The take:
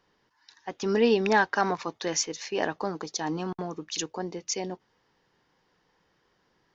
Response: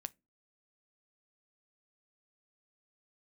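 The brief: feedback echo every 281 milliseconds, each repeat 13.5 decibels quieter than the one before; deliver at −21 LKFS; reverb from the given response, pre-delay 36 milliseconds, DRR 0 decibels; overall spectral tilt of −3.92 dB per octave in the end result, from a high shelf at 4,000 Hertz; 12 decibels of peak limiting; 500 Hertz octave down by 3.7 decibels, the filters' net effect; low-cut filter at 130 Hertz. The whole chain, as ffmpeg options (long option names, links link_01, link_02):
-filter_complex "[0:a]highpass=130,equalizer=frequency=500:width_type=o:gain=-4.5,highshelf=frequency=4000:gain=-7,alimiter=limit=-24dB:level=0:latency=1,aecho=1:1:281|562:0.211|0.0444,asplit=2[link_01][link_02];[1:a]atrim=start_sample=2205,adelay=36[link_03];[link_02][link_03]afir=irnorm=-1:irlink=0,volume=3.5dB[link_04];[link_01][link_04]amix=inputs=2:normalize=0,volume=11dB"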